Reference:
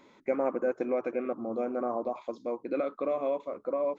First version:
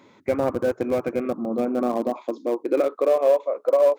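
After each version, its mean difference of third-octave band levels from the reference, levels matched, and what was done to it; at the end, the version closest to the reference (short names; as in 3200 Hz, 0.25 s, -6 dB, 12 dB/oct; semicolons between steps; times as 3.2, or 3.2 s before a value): 5.5 dB: in parallel at -8 dB: Schmitt trigger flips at -26 dBFS; on the sum: high-pass sweep 100 Hz -> 530 Hz, 0.54–3.38; gain +4.5 dB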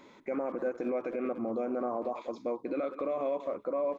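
2.5 dB: speakerphone echo 0.19 s, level -17 dB; limiter -27.5 dBFS, peak gain reduction 11 dB; gain +3 dB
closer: second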